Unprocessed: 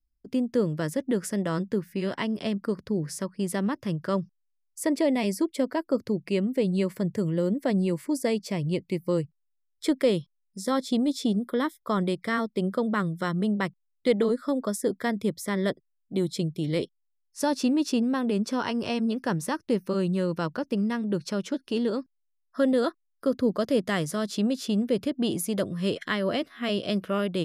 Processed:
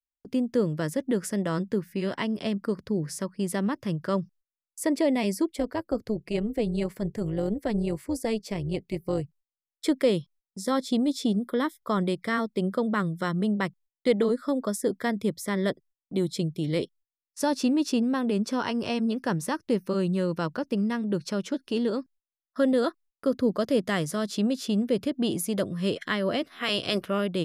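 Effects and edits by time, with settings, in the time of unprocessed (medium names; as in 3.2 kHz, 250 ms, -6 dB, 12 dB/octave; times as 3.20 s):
5.53–9.22 s: AM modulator 220 Hz, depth 40%
26.51–27.05 s: spectral peaks clipped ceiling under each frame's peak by 16 dB
whole clip: gate -52 dBFS, range -26 dB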